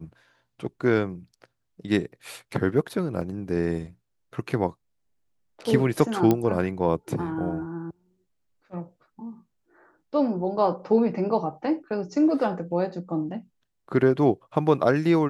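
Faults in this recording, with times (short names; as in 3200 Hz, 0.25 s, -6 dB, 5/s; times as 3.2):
3.21 gap 4 ms
6.31 pop -9 dBFS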